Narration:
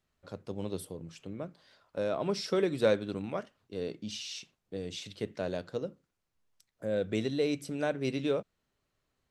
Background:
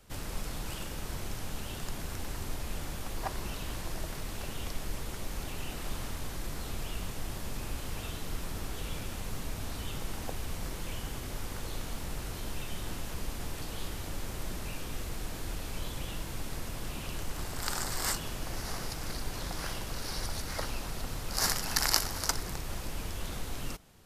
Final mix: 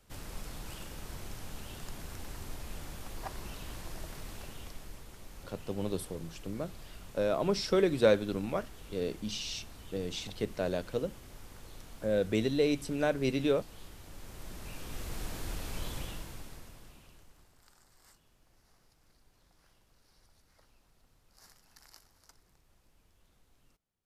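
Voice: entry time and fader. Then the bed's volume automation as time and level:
5.20 s, +2.0 dB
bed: 4.31 s -5.5 dB
5.07 s -12 dB
14.04 s -12 dB
15.19 s -1 dB
15.97 s -1 dB
17.74 s -30.5 dB

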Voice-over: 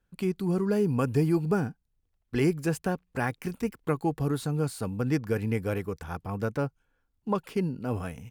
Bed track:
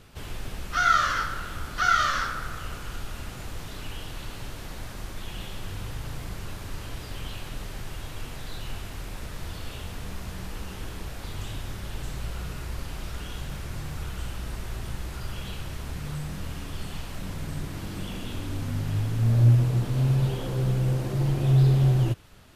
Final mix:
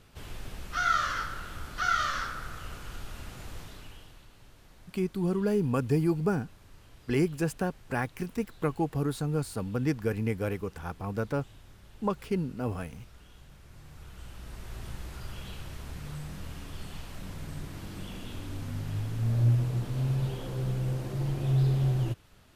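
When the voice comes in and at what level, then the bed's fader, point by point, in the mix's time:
4.75 s, -1.5 dB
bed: 3.58 s -5.5 dB
4.28 s -18 dB
13.59 s -18 dB
14.83 s -6 dB

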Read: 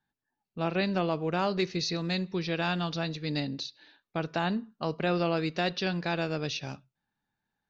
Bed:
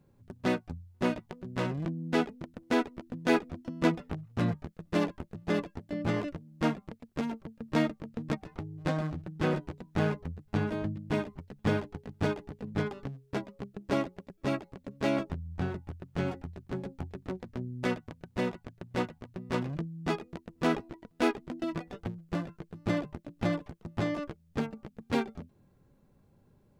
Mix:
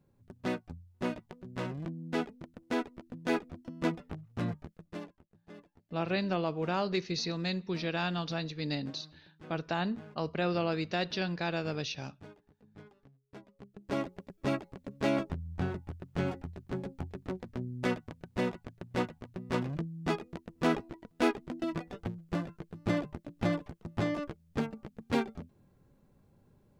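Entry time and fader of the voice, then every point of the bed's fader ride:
5.35 s, -3.0 dB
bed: 4.74 s -5 dB
5.19 s -22 dB
13.11 s -22 dB
14.13 s -0.5 dB

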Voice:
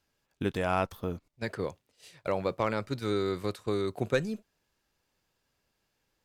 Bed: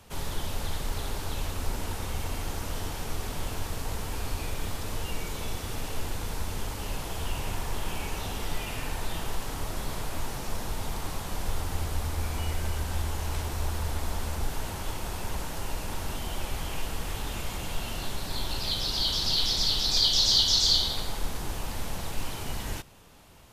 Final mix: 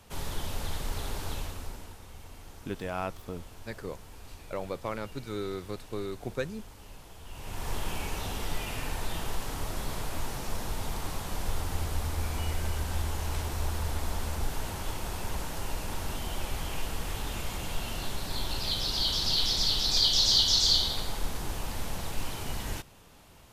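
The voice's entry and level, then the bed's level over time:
2.25 s, -5.5 dB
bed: 1.32 s -2 dB
2.00 s -15 dB
7.24 s -15 dB
7.69 s -1 dB

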